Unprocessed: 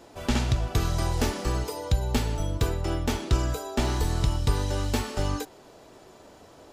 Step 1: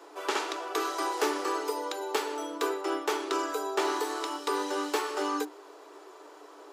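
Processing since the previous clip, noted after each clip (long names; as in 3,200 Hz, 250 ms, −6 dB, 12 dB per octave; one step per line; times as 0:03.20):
Chebyshev high-pass with heavy ripple 290 Hz, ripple 9 dB
level +6.5 dB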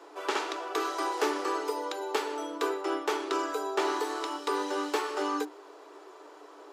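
high-shelf EQ 7,400 Hz −7 dB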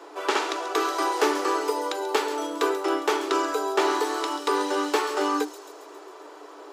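delay with a high-pass on its return 136 ms, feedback 62%, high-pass 5,500 Hz, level −7 dB
level +6 dB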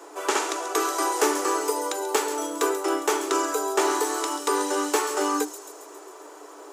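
high shelf with overshoot 5,600 Hz +8.5 dB, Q 1.5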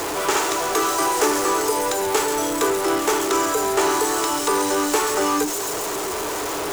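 converter with a step at zero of −21 dBFS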